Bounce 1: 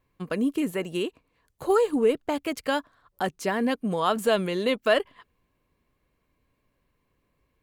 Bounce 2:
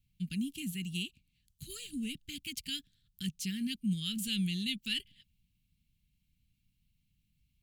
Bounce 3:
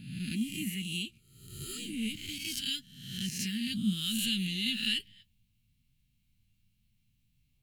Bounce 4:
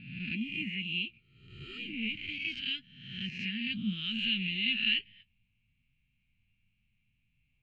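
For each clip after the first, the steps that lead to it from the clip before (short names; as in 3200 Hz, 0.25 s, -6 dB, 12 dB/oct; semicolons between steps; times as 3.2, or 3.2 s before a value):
elliptic band-stop 190–2900 Hz, stop band 80 dB
spectral swells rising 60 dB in 0.89 s; flange 0.67 Hz, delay 7.6 ms, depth 2.3 ms, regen +49%; gain +4.5 dB
ladder low-pass 2700 Hz, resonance 70%; gain +8 dB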